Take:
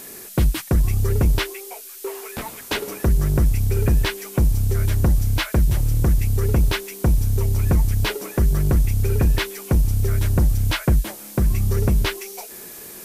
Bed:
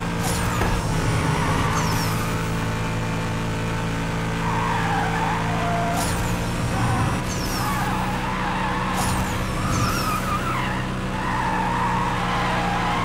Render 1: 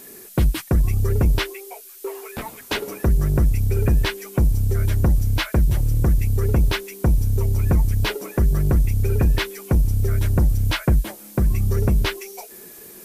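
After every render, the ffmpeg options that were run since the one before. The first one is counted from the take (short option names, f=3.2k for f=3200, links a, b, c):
-af "afftdn=nr=6:nf=-39"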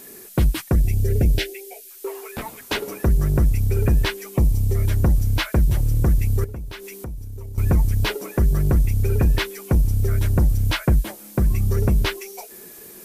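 -filter_complex "[0:a]asettb=1/sr,asplit=3[a][b][c];[a]atrim=end=0.754[d];[b]atrim=start=0.75:end=1.91,asetpts=PTS-STARTPTS,afade=t=in:d=0.004:c=qsin,afade=t=out:st=1.156:d=0.004:c=qsin,asuperstop=centerf=1100:order=4:qfactor=1.1[e];[c]atrim=start=1.906[f];[d][e]acrossfade=d=0.004:c1=hsin:c2=qsin[g];[g][f]acrossfade=d=0.004:c1=qsin:c2=hsin,asettb=1/sr,asplit=3[h][i][j];[h]atrim=end=4.344[k];[i]atrim=start=4.34:end=4.85,asetpts=PTS-STARTPTS,afade=t=in:d=0.004:c=qsin,afade=t=out:st=0.506:d=0.004:c=qsin,asuperstop=centerf=1500:order=4:qfactor=4[l];[j]atrim=start=4.846[m];[k][l]acrossfade=d=0.004:c1=hsin:c2=qsin[n];[n][m]acrossfade=d=0.004:c1=qsin:c2=hsin,asettb=1/sr,asplit=3[o][p][q];[o]atrim=end=6.444[r];[p]atrim=start=6.44:end=7.58,asetpts=PTS-STARTPTS,afade=t=in:d=0.004:c=qsin,afade=t=out:st=1.136:d=0.004:c=qsin,acompressor=threshold=-32dB:ratio=5:attack=3.2:release=140:knee=1:detection=peak[s];[q]atrim=start=7.576[t];[r][s]acrossfade=d=0.004:c1=hsin:c2=qsin[u];[u][t]acrossfade=d=0.004:c1=qsin:c2=hsin"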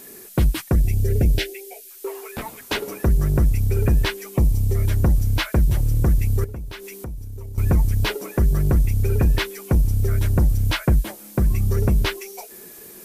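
-af anull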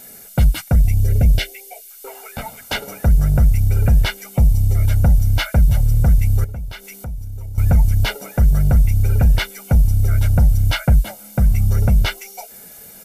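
-af "aecho=1:1:1.4:0.8"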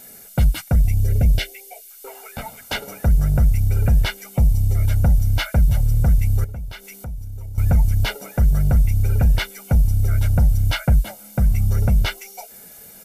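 -af "volume=-2.5dB"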